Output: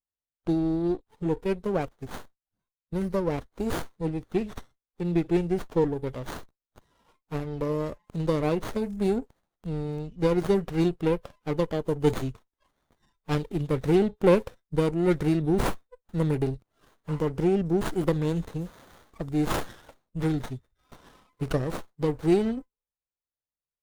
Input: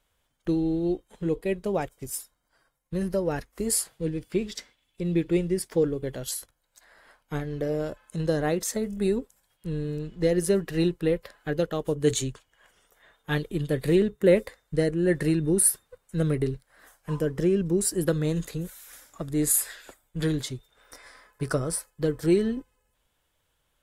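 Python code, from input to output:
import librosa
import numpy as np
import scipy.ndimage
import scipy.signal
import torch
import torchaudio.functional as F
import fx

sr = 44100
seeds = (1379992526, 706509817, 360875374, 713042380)

y = fx.noise_reduce_blind(x, sr, reduce_db=29)
y = fx.running_max(y, sr, window=17)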